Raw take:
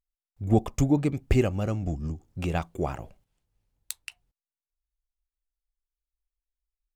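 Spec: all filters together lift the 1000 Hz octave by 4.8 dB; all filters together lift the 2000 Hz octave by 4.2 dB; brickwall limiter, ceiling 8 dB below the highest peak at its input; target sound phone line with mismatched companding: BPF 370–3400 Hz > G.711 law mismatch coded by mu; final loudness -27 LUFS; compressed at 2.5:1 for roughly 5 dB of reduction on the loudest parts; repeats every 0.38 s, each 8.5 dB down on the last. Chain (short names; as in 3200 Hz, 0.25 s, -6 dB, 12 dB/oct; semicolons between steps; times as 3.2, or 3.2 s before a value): bell 1000 Hz +6.5 dB; bell 2000 Hz +4.5 dB; compressor 2.5:1, threshold -23 dBFS; limiter -18.5 dBFS; BPF 370–3400 Hz; feedback echo 0.38 s, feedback 38%, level -8.5 dB; G.711 law mismatch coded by mu; gain +8.5 dB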